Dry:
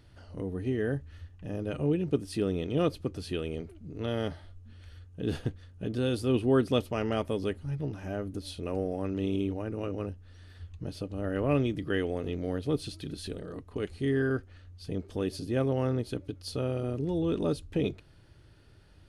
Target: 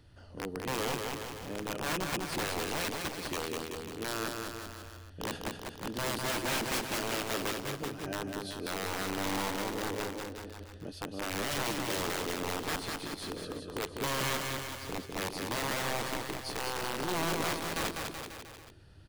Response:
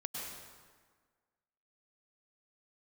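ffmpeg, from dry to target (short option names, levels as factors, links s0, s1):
-filter_complex "[0:a]bandreject=f=2200:w=16,acrossover=split=200[s0][s1];[s0]acompressor=threshold=0.00282:ratio=6[s2];[s2][s1]amix=inputs=2:normalize=0,aeval=exprs='(mod(21.1*val(0)+1,2)-1)/21.1':c=same,aecho=1:1:200|380|542|687.8|819:0.631|0.398|0.251|0.158|0.1,volume=0.841"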